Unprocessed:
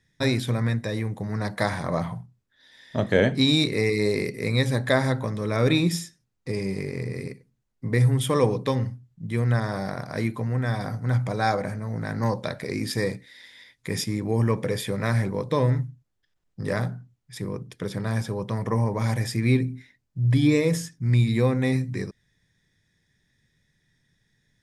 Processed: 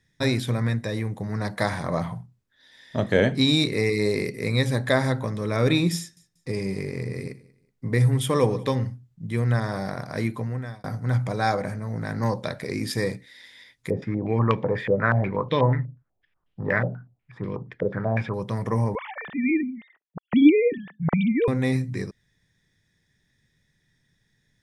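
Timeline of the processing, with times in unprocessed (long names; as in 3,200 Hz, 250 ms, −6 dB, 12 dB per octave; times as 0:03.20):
0:05.98–0:08.75: repeating echo 187 ms, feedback 31%, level −22 dB
0:10.37–0:10.84: fade out
0:13.90–0:18.34: low-pass on a step sequencer 8.2 Hz 550–3,100 Hz
0:18.95–0:21.48: three sine waves on the formant tracks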